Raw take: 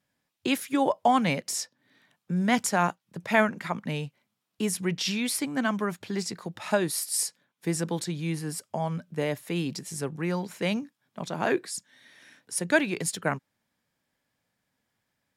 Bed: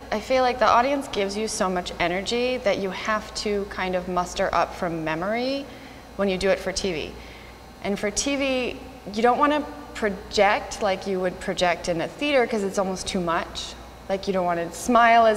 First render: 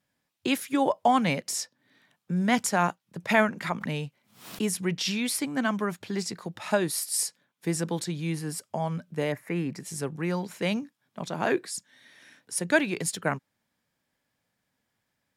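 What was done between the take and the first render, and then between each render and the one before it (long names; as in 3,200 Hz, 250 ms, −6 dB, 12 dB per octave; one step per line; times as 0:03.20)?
0:03.29–0:04.77: background raised ahead of every attack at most 120 dB per second
0:09.32–0:09.80: high shelf with overshoot 2,600 Hz −8 dB, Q 3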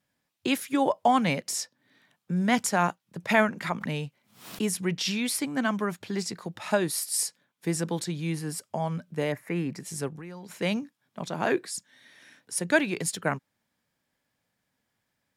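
0:10.08–0:10.54: downward compressor 8 to 1, threshold −38 dBFS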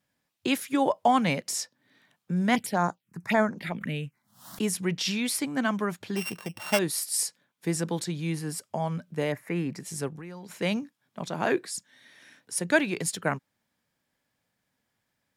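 0:02.55–0:04.58: phaser swept by the level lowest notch 350 Hz, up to 2,800 Hz, full sweep at −21 dBFS
0:06.16–0:06.79: samples sorted by size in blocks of 16 samples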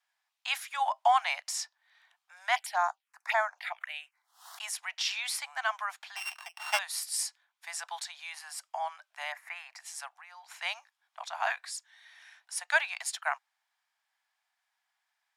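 Butterworth high-pass 700 Hz 72 dB per octave
high-shelf EQ 10,000 Hz −12 dB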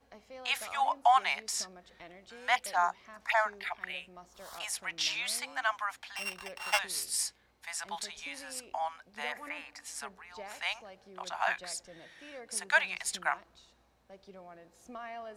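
mix in bed −27.5 dB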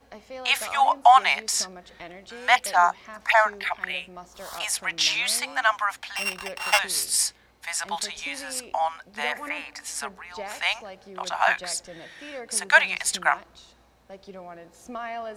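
level +9.5 dB
brickwall limiter −3 dBFS, peak gain reduction 1.5 dB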